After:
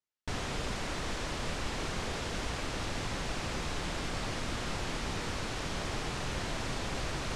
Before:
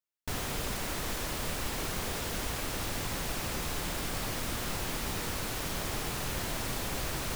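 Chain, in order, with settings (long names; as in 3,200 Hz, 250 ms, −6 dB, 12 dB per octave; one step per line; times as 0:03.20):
Bessel low-pass filter 5,900 Hz, order 4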